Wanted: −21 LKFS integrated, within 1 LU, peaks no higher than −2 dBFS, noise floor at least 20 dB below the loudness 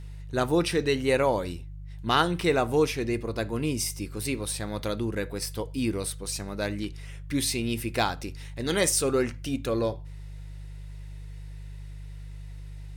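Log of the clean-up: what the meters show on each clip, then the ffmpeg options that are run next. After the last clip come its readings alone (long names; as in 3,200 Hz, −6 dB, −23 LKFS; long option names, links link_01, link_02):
mains hum 50 Hz; hum harmonics up to 150 Hz; level of the hum −37 dBFS; integrated loudness −28.0 LKFS; sample peak −8.0 dBFS; target loudness −21.0 LKFS
→ -af "bandreject=frequency=50:width_type=h:width=4,bandreject=frequency=100:width_type=h:width=4,bandreject=frequency=150:width_type=h:width=4"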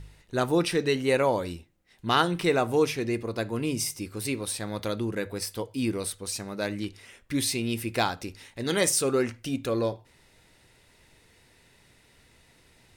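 mains hum none found; integrated loudness −28.0 LKFS; sample peak −7.5 dBFS; target loudness −21.0 LKFS
→ -af "volume=7dB,alimiter=limit=-2dB:level=0:latency=1"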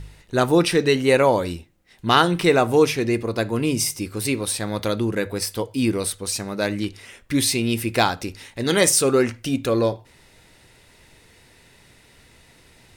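integrated loudness −21.0 LKFS; sample peak −2.0 dBFS; background noise floor −54 dBFS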